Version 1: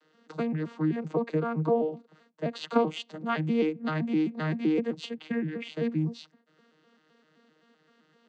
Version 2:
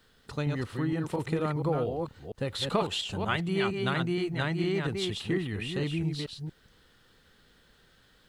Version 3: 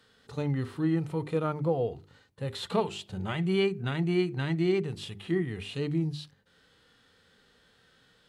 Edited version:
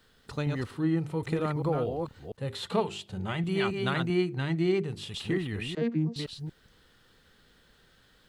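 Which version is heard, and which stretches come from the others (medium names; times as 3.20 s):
2
0.71–1.23 s: from 3
2.37–3.44 s: from 3
4.10–5.14 s: from 3
5.75–6.16 s: from 1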